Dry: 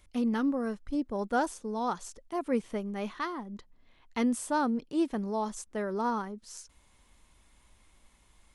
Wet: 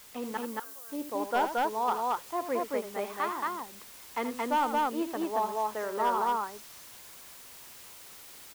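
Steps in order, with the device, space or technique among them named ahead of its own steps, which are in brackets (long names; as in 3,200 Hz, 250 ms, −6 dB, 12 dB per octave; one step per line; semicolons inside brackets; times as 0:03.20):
high-pass filter 210 Hz
drive-through speaker (band-pass filter 380–3,100 Hz; parametric band 950 Hz +5 dB 0.77 octaves; hard clipping −21.5 dBFS, distortion −17 dB; white noise bed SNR 17 dB)
0:00.37–0:00.89: first difference
loudspeakers that aren't time-aligned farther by 27 metres −10 dB, 77 metres −1 dB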